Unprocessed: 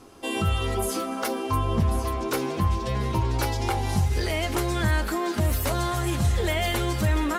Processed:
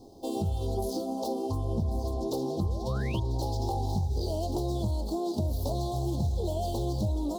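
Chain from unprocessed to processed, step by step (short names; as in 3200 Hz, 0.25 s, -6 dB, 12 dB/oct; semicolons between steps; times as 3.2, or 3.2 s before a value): median filter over 5 samples; compressor, threshold -25 dBFS, peak gain reduction 7.5 dB; elliptic band-stop 810–4100 Hz, stop band 60 dB; painted sound rise, 2.62–3.2, 330–3500 Hz -44 dBFS; Doppler distortion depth 0.13 ms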